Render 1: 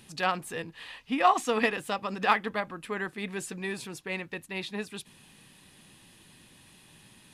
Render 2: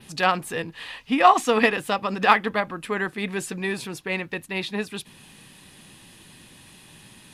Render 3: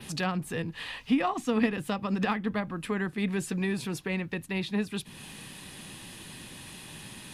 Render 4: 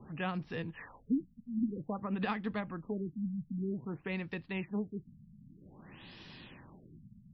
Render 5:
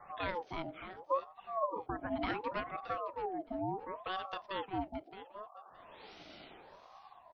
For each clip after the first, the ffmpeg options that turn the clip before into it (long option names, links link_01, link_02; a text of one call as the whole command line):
ffmpeg -i in.wav -af "adynamicequalizer=threshold=0.00178:dfrequency=7600:dqfactor=1.3:tfrequency=7600:tqfactor=1.3:attack=5:release=100:ratio=0.375:range=2:mode=cutabove:tftype=bell,volume=7dB" out.wav
ffmpeg -i in.wav -filter_complex "[0:a]acrossover=split=240[link_01][link_02];[link_02]acompressor=threshold=-42dB:ratio=2.5[link_03];[link_01][link_03]amix=inputs=2:normalize=0,volume=4dB" out.wav
ffmpeg -i in.wav -af "afftfilt=real='re*lt(b*sr/1024,220*pow(5900/220,0.5+0.5*sin(2*PI*0.52*pts/sr)))':imag='im*lt(b*sr/1024,220*pow(5900/220,0.5+0.5*sin(2*PI*0.52*pts/sr)))':win_size=1024:overlap=0.75,volume=-6dB" out.wav
ffmpeg -i in.wav -af "aecho=1:1:620|1240|1860:0.251|0.0502|0.01,aeval=exprs='val(0)*sin(2*PI*710*n/s+710*0.35/0.71*sin(2*PI*0.71*n/s))':channel_layout=same,volume=1dB" out.wav